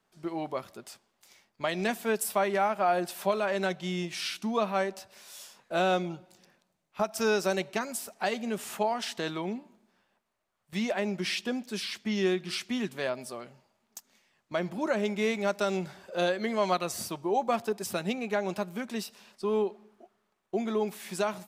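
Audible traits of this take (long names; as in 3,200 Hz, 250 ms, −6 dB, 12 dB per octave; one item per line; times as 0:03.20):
background noise floor −77 dBFS
spectral slope −4.0 dB per octave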